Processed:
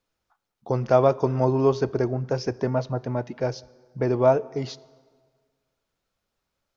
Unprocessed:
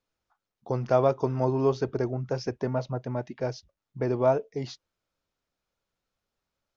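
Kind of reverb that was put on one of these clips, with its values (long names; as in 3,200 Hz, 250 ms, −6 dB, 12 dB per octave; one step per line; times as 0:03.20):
dense smooth reverb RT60 1.7 s, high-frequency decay 0.75×, DRR 20 dB
level +4 dB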